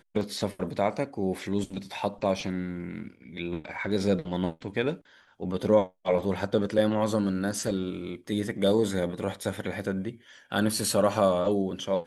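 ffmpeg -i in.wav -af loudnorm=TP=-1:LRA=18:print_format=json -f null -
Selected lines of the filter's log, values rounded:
"input_i" : "-28.3",
"input_tp" : "-8.6",
"input_lra" : "3.5",
"input_thresh" : "-38.6",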